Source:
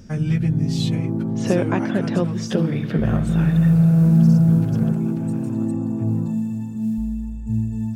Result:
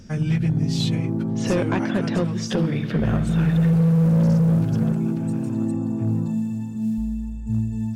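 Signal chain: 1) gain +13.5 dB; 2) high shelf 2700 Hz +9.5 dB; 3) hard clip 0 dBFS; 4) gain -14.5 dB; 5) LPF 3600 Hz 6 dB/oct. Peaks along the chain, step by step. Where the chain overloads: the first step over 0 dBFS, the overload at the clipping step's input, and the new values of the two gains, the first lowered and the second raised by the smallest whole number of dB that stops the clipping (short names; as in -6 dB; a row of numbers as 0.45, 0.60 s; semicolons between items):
+8.5, +9.0, 0.0, -14.5, -14.5 dBFS; step 1, 9.0 dB; step 1 +4.5 dB, step 4 -5.5 dB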